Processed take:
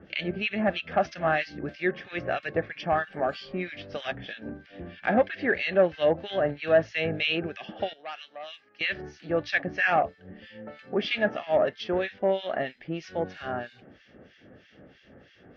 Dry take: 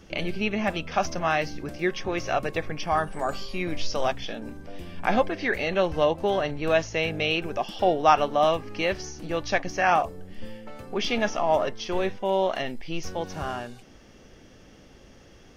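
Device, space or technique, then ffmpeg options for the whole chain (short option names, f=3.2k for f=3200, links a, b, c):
guitar amplifier with harmonic tremolo: -filter_complex "[0:a]acrossover=split=1600[a][b];[a]aeval=exprs='val(0)*(1-1/2+1/2*cos(2*PI*3.1*n/s))':c=same[c];[b]aeval=exprs='val(0)*(1-1/2-1/2*cos(2*PI*3.1*n/s))':c=same[d];[c][d]amix=inputs=2:normalize=0,asoftclip=type=tanh:threshold=-14dB,highpass=91,equalizer=f=600:t=q:w=4:g=3,equalizer=f=1k:t=q:w=4:g=-10,equalizer=f=1.7k:t=q:w=4:g=7,lowpass=f=4k:w=0.5412,lowpass=f=4k:w=1.3066,asettb=1/sr,asplit=3[e][f][g];[e]atrim=end=7.934[h];[f]atrim=start=7.93:end=8.81,asetpts=PTS-STARTPTS,afade=t=in:d=0.004:c=qsin,afade=t=out:st=0.876:d=0.004:c=qsin,aderivative[i];[g]atrim=start=8.806[j];[h][i]acrossfade=d=0.004:c1=hsin:c2=qsin[k];[k][j]acrossfade=d=0.004:c1=qsin:c2=hsin,volume=3dB"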